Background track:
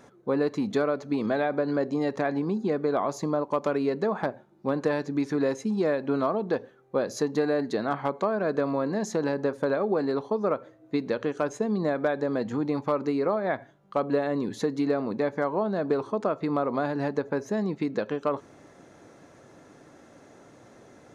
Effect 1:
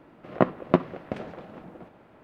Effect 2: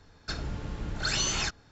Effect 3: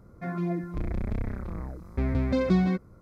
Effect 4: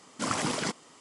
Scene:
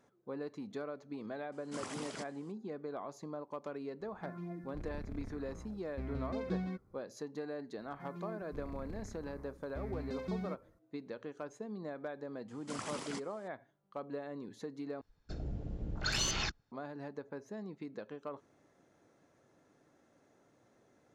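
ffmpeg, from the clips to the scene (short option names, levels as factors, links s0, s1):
-filter_complex "[4:a]asplit=2[s0][s1];[3:a]asplit=2[s2][s3];[0:a]volume=0.15[s4];[s3]highshelf=f=5100:g=8.5[s5];[2:a]afwtdn=0.0141[s6];[s4]asplit=2[s7][s8];[s7]atrim=end=15.014[s9];[s6]atrim=end=1.71,asetpts=PTS-STARTPTS,volume=0.596[s10];[s8]atrim=start=16.716[s11];[s0]atrim=end=1,asetpts=PTS-STARTPTS,volume=0.188,afade=t=in:d=0.004:c=hsin,afade=t=out:st=0.996:d=0.004:c=hsin,adelay=1520[s12];[s2]atrim=end=3.01,asetpts=PTS-STARTPTS,volume=0.188,afade=t=in:d=0.004:c=hsin,afade=t=out:st=3.006:d=0.004:c=hsin,adelay=4000[s13];[s5]atrim=end=3.01,asetpts=PTS-STARTPTS,volume=0.15,afade=t=in:d=0.004:c=hsin,afade=t=out:st=3.006:d=0.004:c=hsin,adelay=343098S[s14];[s1]atrim=end=1,asetpts=PTS-STARTPTS,volume=0.224,afade=t=in:d=0.004:c=hsin,afade=t=out:st=0.996:d=0.004:c=hsin,adelay=12480[s15];[s9][s10]acrossfade=d=0.004:c1=hsin:c2=hsin[s16];[s16][s11]acrossfade=d=0.004:c1=hsin:c2=hsin[s17];[s17][s12][s13][s14][s15]amix=inputs=5:normalize=0"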